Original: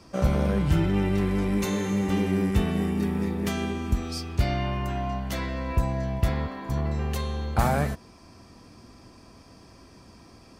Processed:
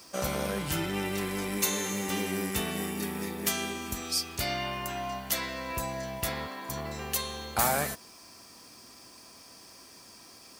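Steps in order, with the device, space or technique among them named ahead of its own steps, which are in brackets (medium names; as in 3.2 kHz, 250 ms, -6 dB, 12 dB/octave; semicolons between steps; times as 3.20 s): turntable without a phono preamp (RIAA curve recording; white noise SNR 30 dB); trim -1.5 dB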